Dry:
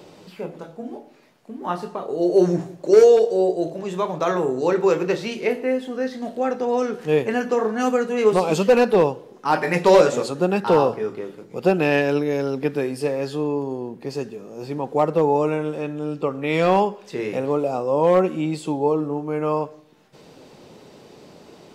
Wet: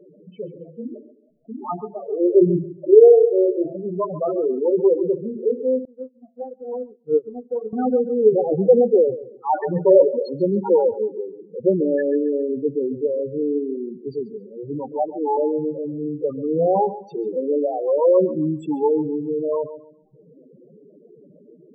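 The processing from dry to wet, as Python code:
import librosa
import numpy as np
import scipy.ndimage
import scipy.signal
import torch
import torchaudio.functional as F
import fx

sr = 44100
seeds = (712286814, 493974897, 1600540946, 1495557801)

y = fx.spec_topn(x, sr, count=4)
y = fx.fixed_phaser(y, sr, hz=760.0, stages=8, at=(14.92, 15.37))
y = fx.echo_filtered(y, sr, ms=137, feedback_pct=25, hz=4800.0, wet_db=-14.5)
y = fx.upward_expand(y, sr, threshold_db=-34.0, expansion=2.5, at=(5.85, 7.73))
y = y * librosa.db_to_amplitude(2.5)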